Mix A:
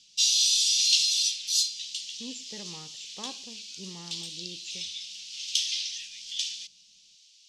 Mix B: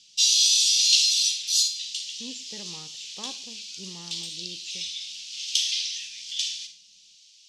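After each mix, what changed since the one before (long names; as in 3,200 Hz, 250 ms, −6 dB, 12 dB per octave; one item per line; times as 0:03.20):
background: send on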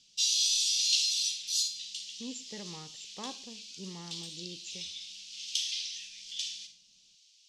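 background −8.0 dB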